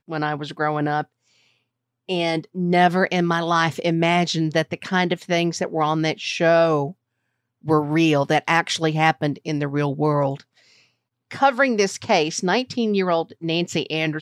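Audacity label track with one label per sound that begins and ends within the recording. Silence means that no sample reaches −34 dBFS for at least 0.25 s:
2.090000	6.910000	sound
7.650000	10.400000	sound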